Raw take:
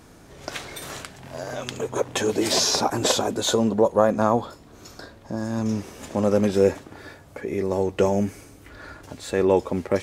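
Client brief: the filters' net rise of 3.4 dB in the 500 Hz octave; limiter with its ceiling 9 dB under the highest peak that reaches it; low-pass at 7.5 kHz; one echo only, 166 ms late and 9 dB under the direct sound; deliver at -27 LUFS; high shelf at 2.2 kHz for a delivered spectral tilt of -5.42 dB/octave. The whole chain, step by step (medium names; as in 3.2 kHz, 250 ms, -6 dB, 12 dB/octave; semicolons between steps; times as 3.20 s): low-pass 7.5 kHz; peaking EQ 500 Hz +4.5 dB; treble shelf 2.2 kHz -8 dB; peak limiter -11 dBFS; delay 166 ms -9 dB; trim -3.5 dB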